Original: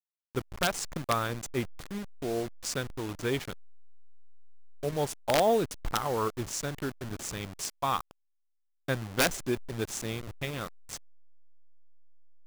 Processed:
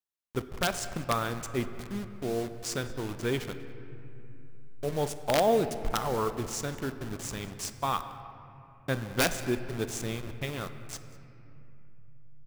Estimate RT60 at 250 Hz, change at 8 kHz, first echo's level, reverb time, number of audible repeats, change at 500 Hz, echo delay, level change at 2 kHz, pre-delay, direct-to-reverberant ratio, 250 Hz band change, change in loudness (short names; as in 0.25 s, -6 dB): 3.9 s, -1.0 dB, -22.0 dB, 2.9 s, 1, +0.5 dB, 0.194 s, -0.5 dB, 3 ms, 9.5 dB, +1.0 dB, 0.0 dB